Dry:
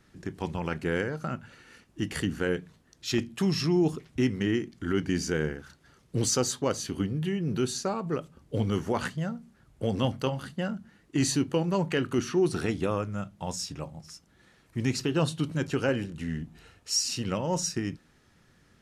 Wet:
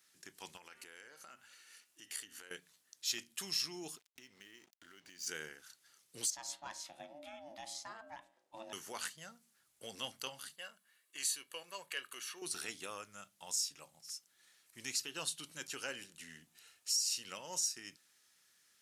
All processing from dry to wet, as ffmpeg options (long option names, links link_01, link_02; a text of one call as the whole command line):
ffmpeg -i in.wav -filter_complex "[0:a]asettb=1/sr,asplit=3[link_01][link_02][link_03];[link_01]atrim=end=0.574[link_04];[link_02]atrim=start=0.57:end=2.51,asetpts=PTS-STARTPTS,afade=type=in:duration=0.004:curve=qsin,afade=type=out:start_time=1.936:duration=0.004:curve=qsin,equalizer=frequency=150:width=1.9:gain=-10,bandreject=frequency=131.4:width_type=h:width=4,bandreject=frequency=262.8:width_type=h:width=4,bandreject=frequency=394.2:width_type=h:width=4,bandreject=frequency=525.6:width_type=h:width=4,bandreject=frequency=657:width_type=h:width=4,bandreject=frequency=788.4:width_type=h:width=4,bandreject=frequency=919.8:width_type=h:width=4,bandreject=frequency=1051.2:width_type=h:width=4,bandreject=frequency=1182.6:width_type=h:width=4,bandreject=frequency=1314:width_type=h:width=4,bandreject=frequency=1445.4:width_type=h:width=4,bandreject=frequency=1576.8:width_type=h:width=4,bandreject=frequency=1708.2:width_type=h:width=4,bandreject=frequency=1839.6:width_type=h:width=4,bandreject=frequency=1971:width_type=h:width=4,bandreject=frequency=2102.4:width_type=h:width=4,bandreject=frequency=2233.8:width_type=h:width=4,bandreject=frequency=2365.2:width_type=h:width=4,bandreject=frequency=2496.6:width_type=h:width=4,bandreject=frequency=2628:width_type=h:width=4,bandreject=frequency=2759.4:width_type=h:width=4,bandreject=frequency=2890.8:width_type=h:width=4,bandreject=frequency=3022.2:width_type=h:width=4,bandreject=frequency=3153.6:width_type=h:width=4,bandreject=frequency=3285:width_type=h:width=4,bandreject=frequency=3416.4:width_type=h:width=4,bandreject=frequency=3547.8:width_type=h:width=4,bandreject=frequency=3679.2:width_type=h:width=4,bandreject=frequency=3810.6:width_type=h:width=4,bandreject=frequency=3942:width_type=h:width=4,bandreject=frequency=4073.4:width_type=h:width=4,acompressor=threshold=-37dB:ratio=6:attack=3.2:release=140:knee=1:detection=peak[link_05];[link_03]atrim=start=2.506[link_06];[link_04][link_05]acrossfade=duration=0.004:curve1=hsin:curve2=qsin[link_07];[link_07][link_06]acrossfade=duration=0.004:curve1=qsin:curve2=hsin,asettb=1/sr,asplit=3[link_08][link_09][link_10];[link_08]atrim=end=3.974[link_11];[link_09]atrim=start=3.97:end=5.27,asetpts=PTS-STARTPTS,afade=type=in:duration=0.004:curve=qsin,afade=type=out:start_time=1.296:duration=0.004:curve=qsin,lowpass=6500,aeval=exprs='sgn(val(0))*max(abs(val(0))-0.00422,0)':channel_layout=same,acompressor=threshold=-36dB:ratio=10:attack=3.2:release=140:knee=1:detection=peak[link_12];[link_10]atrim=start=5.266[link_13];[link_11][link_12]acrossfade=duration=0.004:curve1=hsin:curve2=qsin[link_14];[link_14][link_13]acrossfade=duration=0.004:curve1=qsin:curve2=hsin,asettb=1/sr,asplit=3[link_15][link_16][link_17];[link_15]atrim=end=6.304[link_18];[link_16]atrim=start=6.3:end=8.73,asetpts=PTS-STARTPTS,afade=type=in:duration=0.004:curve=qsin,afade=type=out:start_time=2.426:duration=0.004:curve=qsin,aemphasis=mode=reproduction:type=75kf,bandreject=frequency=126:width_type=h:width=4,bandreject=frequency=252:width_type=h:width=4,bandreject=frequency=378:width_type=h:width=4,bandreject=frequency=504:width_type=h:width=4,bandreject=frequency=630:width_type=h:width=4,bandreject=frequency=756:width_type=h:width=4,bandreject=frequency=882:width_type=h:width=4,bandreject=frequency=1008:width_type=h:width=4,bandreject=frequency=1134:width_type=h:width=4,bandreject=frequency=1260:width_type=h:width=4,bandreject=frequency=1386:width_type=h:width=4,bandreject=frequency=1512:width_type=h:width=4,bandreject=frequency=1638:width_type=h:width=4,bandreject=frequency=1764:width_type=h:width=4,bandreject=frequency=1890:width_type=h:width=4,bandreject=frequency=2016:width_type=h:width=4,bandreject=frequency=2142:width_type=h:width=4,bandreject=frequency=2268:width_type=h:width=4,bandreject=frequency=2394:width_type=h:width=4,bandreject=frequency=2520:width_type=h:width=4,bandreject=frequency=2646:width_type=h:width=4,bandreject=frequency=2772:width_type=h:width=4,bandreject=frequency=2898:width_type=h:width=4,bandreject=frequency=3024:width_type=h:width=4,bandreject=frequency=3150:width_type=h:width=4,bandreject=frequency=3276:width_type=h:width=4,bandreject=frequency=3402:width_type=h:width=4,bandreject=frequency=3528:width_type=h:width=4,bandreject=frequency=3654:width_type=h:width=4,bandreject=frequency=3780:width_type=h:width=4,bandreject=frequency=3906:width_type=h:width=4,aeval=exprs='val(0)*sin(2*PI*440*n/s)':channel_layout=same[link_19];[link_17]atrim=start=8.726[link_20];[link_18][link_19]acrossfade=duration=0.004:curve1=hsin:curve2=qsin[link_21];[link_21][link_20]acrossfade=duration=0.004:curve1=qsin:curve2=hsin,asettb=1/sr,asplit=3[link_22][link_23][link_24];[link_22]atrim=end=10.564[link_25];[link_23]atrim=start=10.56:end=12.42,asetpts=PTS-STARTPTS,afade=type=in:duration=0.004:curve=qsin,afade=type=out:start_time=1.856:duration=0.004:curve=qsin,highpass=frequency=790:poles=1,equalizer=frequency=5800:width=1.6:gain=-8.5,aecho=1:1:1.8:0.39,atrim=end_sample=82026[link_26];[link_24]atrim=start=12.416[link_27];[link_25][link_26]acrossfade=duration=0.004:curve1=hsin:curve2=qsin[link_28];[link_28][link_27]acrossfade=duration=0.004:curve1=qsin:curve2=hsin,aderivative,alimiter=level_in=2.5dB:limit=-24dB:level=0:latency=1:release=250,volume=-2.5dB,volume=3dB" out.wav